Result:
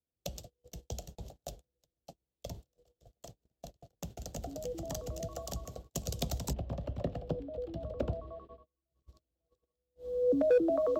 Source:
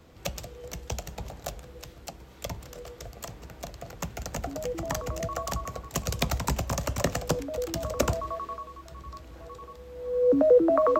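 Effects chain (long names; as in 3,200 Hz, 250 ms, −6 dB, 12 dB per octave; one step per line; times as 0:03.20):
0:06.53–0:08.90: high-frequency loss of the air 450 metres
noise gate −38 dBFS, range −35 dB
flat-topped bell 1,500 Hz −12.5 dB
hard clipping −13.5 dBFS, distortion −25 dB
level −6.5 dB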